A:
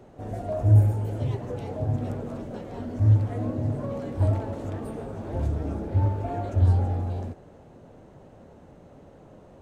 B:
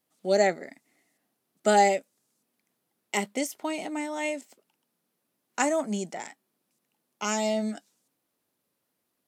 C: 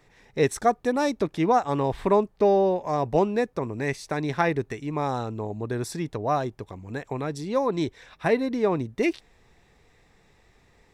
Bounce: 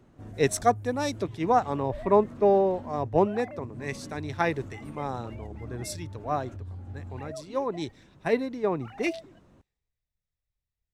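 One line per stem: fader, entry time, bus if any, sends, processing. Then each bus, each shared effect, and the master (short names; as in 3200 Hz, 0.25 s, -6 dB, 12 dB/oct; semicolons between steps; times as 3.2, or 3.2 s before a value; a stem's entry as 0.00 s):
-5.5 dB, 0.00 s, bus A, no send, band shelf 590 Hz -8 dB 1.3 oct; compressor 6:1, threshold -30 dBFS, peak gain reduction 16.5 dB
-16.5 dB, 1.60 s, bus A, no send, sine-wave speech; sample leveller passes 1
-4.5 dB, 0.00 s, no bus, no send, three-band expander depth 100%
bus A: 0.0 dB, limiter -34 dBFS, peak gain reduction 10.5 dB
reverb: off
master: dry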